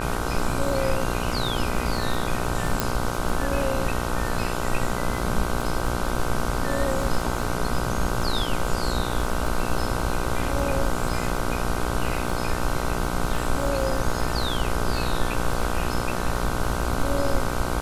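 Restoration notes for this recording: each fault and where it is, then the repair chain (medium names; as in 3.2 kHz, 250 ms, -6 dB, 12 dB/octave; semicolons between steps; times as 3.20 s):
buzz 60 Hz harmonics 26 -29 dBFS
crackle 54 per s -31 dBFS
2.80 s: pop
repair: de-click; de-hum 60 Hz, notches 26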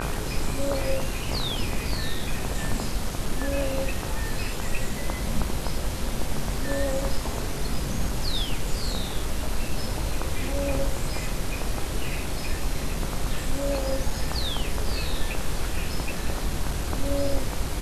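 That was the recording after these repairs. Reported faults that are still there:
nothing left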